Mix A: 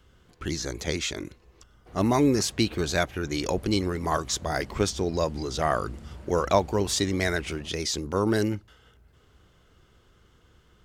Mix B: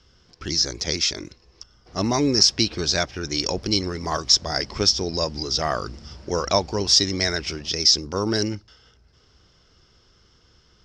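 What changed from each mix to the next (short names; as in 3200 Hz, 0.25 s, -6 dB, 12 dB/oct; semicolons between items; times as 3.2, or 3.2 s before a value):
master: add synth low-pass 5300 Hz, resonance Q 9.9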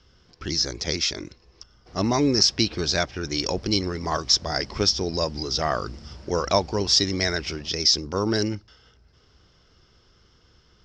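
speech: add air absorption 56 m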